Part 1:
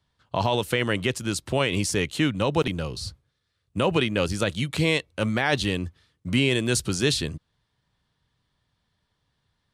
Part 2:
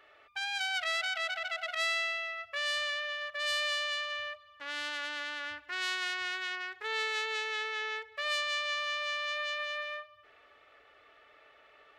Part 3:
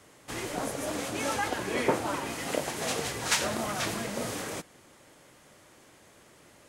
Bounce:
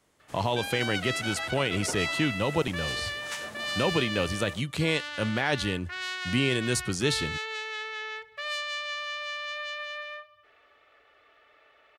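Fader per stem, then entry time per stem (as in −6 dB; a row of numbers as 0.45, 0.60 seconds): −4.0, −0.5, −12.5 decibels; 0.00, 0.20, 0.00 seconds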